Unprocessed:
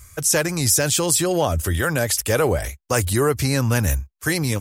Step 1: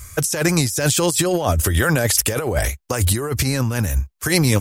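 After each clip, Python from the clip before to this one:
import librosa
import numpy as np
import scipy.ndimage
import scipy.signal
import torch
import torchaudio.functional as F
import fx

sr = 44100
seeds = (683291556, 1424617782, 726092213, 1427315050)

y = fx.over_compress(x, sr, threshold_db=-22.0, ratio=-0.5)
y = y * 10.0 ** (4.5 / 20.0)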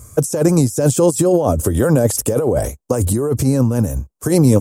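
y = fx.graphic_eq(x, sr, hz=(125, 250, 500, 1000, 2000, 4000, 8000), db=(8, 11, 11, 5, -9, -6, 6))
y = y * 10.0 ** (-6.0 / 20.0)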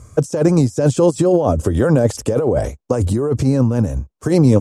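y = scipy.signal.sosfilt(scipy.signal.butter(2, 5000.0, 'lowpass', fs=sr, output='sos'), x)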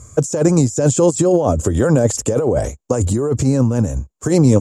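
y = fx.peak_eq(x, sr, hz=7100.0, db=14.5, octaves=0.27)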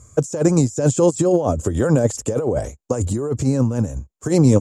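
y = fx.upward_expand(x, sr, threshold_db=-21.0, expansion=1.5)
y = y * 10.0 ** (-1.0 / 20.0)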